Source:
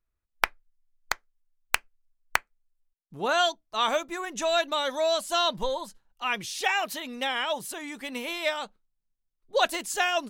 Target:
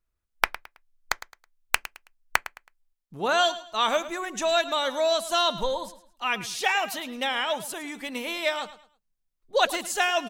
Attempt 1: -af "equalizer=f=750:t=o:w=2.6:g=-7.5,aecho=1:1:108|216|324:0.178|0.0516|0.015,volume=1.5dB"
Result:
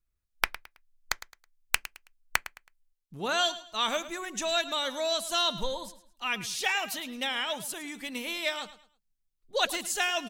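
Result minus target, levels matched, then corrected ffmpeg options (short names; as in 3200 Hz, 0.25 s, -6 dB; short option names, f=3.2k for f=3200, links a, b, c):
1000 Hz band -3.0 dB
-af "aecho=1:1:108|216|324:0.178|0.0516|0.015,volume=1.5dB"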